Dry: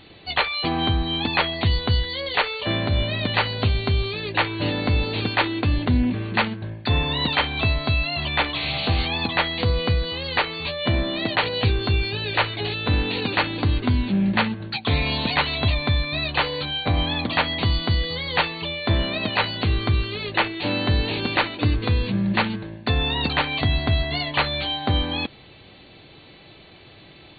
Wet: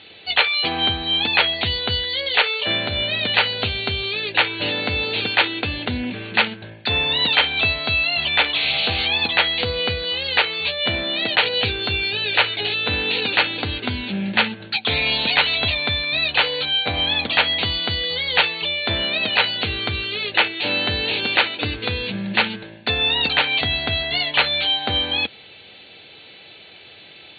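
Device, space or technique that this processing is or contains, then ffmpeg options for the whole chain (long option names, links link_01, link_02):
guitar cabinet: -af "highpass=77,equalizer=frequency=83:width_type=q:width=4:gain=6,equalizer=frequency=210:width_type=q:width=4:gain=4,equalizer=frequency=460:width_type=q:width=4:gain=6,equalizer=frequency=1100:width_type=q:width=4:gain=-9,equalizer=frequency=1900:width_type=q:width=4:gain=-4,lowpass=frequency=4000:width=0.5412,lowpass=frequency=4000:width=1.3066,tiltshelf=frequency=650:gain=-9.5"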